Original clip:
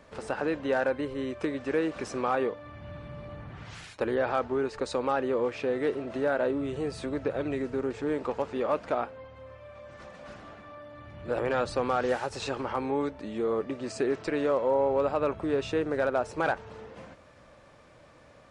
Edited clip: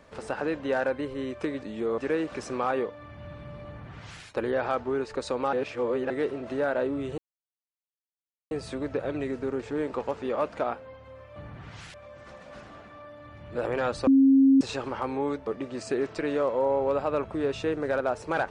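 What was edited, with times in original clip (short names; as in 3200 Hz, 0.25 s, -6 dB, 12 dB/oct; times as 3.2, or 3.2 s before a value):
3.3–3.88 copy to 9.67
5.17–5.74 reverse
6.82 insert silence 1.33 s
11.8–12.34 bleep 270 Hz -14.5 dBFS
13.2–13.56 move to 1.62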